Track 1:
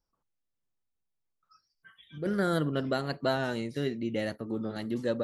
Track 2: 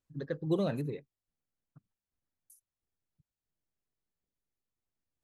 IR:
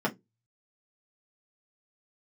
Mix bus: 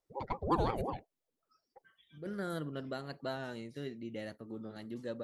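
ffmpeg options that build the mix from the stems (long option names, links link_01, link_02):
-filter_complex "[0:a]volume=-10.5dB[link_01];[1:a]aeval=exprs='val(0)*sin(2*PI*460*n/s+460*0.5/5.6*sin(2*PI*5.6*n/s))':channel_layout=same,volume=2dB[link_02];[link_01][link_02]amix=inputs=2:normalize=0"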